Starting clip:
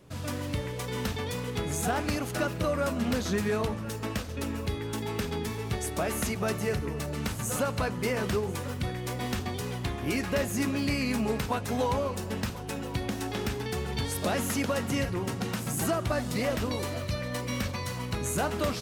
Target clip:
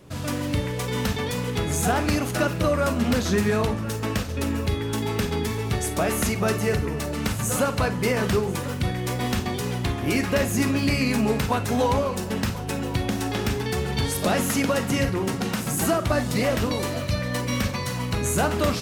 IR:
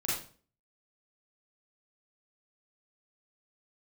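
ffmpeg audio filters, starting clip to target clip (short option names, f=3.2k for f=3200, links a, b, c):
-filter_complex "[0:a]asplit=2[a][b];[1:a]atrim=start_sample=2205,atrim=end_sample=3087[c];[b][c]afir=irnorm=-1:irlink=0,volume=-13.5dB[d];[a][d]amix=inputs=2:normalize=0,volume=4.5dB"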